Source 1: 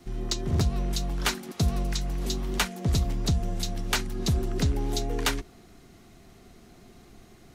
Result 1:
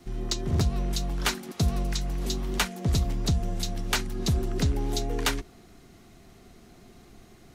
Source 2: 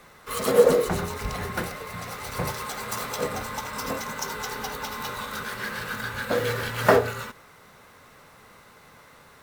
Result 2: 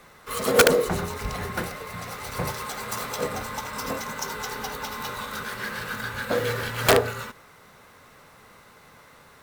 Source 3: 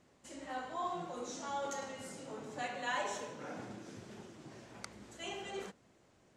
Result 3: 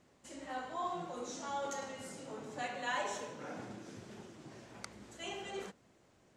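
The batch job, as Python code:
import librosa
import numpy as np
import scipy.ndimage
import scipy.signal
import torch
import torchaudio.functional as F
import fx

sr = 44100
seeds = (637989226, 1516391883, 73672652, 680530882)

y = (np.mod(10.0 ** (8.0 / 20.0) * x + 1.0, 2.0) - 1.0) / 10.0 ** (8.0 / 20.0)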